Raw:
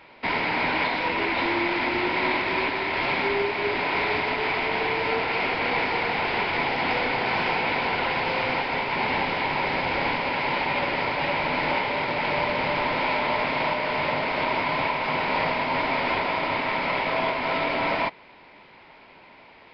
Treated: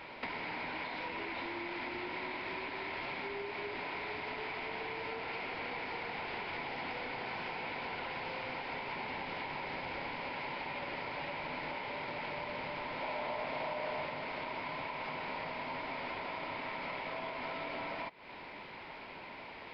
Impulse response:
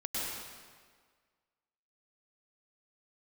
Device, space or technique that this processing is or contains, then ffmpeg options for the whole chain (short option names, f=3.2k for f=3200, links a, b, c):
serial compression, peaks first: -filter_complex "[0:a]acompressor=threshold=-36dB:ratio=5,acompressor=threshold=-43dB:ratio=2,asettb=1/sr,asplit=3[a][b][c];[a]atrim=end=13.014[d];[b]atrim=start=13.01:end=14.06,asetpts=PTS-STARTPTS,afade=t=in:d=0.004:c=qsin,afade=t=out:st=1.046:d=0.004:c=qsin,equalizer=f=650:w=2:g=6[e];[c]atrim=start=14.056[f];[d][e]acrossfade=d=0.004:c1=hsin:c2=qsin[g];[g][f]acrossfade=d=0.004:c1=qsin:c2=hsin,volume=2dB"